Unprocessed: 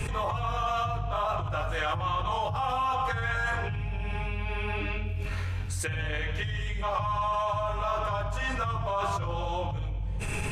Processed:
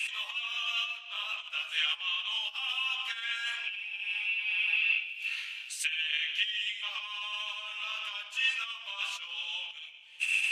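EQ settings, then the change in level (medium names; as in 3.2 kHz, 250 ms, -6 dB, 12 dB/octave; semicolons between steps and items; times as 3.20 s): resonant high-pass 2.8 kHz, resonance Q 5.8; -1.5 dB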